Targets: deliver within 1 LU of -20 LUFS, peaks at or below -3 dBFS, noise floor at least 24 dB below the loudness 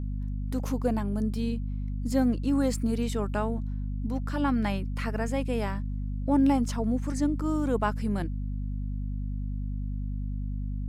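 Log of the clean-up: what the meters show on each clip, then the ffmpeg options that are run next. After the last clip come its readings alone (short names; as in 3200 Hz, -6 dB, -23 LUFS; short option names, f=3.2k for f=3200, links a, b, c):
hum 50 Hz; harmonics up to 250 Hz; hum level -29 dBFS; loudness -29.5 LUFS; peak -12.5 dBFS; loudness target -20.0 LUFS
-> -af "bandreject=f=50:t=h:w=4,bandreject=f=100:t=h:w=4,bandreject=f=150:t=h:w=4,bandreject=f=200:t=h:w=4,bandreject=f=250:t=h:w=4"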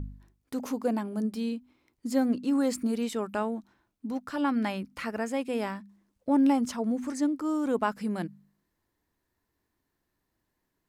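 hum none; loudness -30.0 LUFS; peak -13.5 dBFS; loudness target -20.0 LUFS
-> -af "volume=10dB"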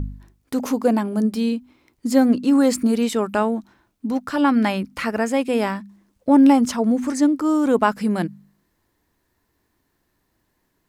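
loudness -20.0 LUFS; peak -3.5 dBFS; noise floor -71 dBFS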